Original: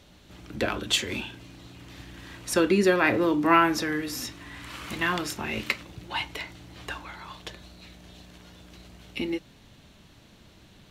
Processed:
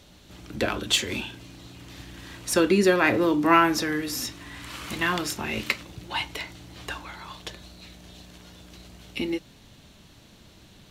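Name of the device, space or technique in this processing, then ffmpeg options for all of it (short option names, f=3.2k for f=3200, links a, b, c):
exciter from parts: -filter_complex "[0:a]asplit=2[a][b];[b]highpass=2.9k,asoftclip=type=tanh:threshold=-31dB,volume=-6.5dB[c];[a][c]amix=inputs=2:normalize=0,volume=1.5dB"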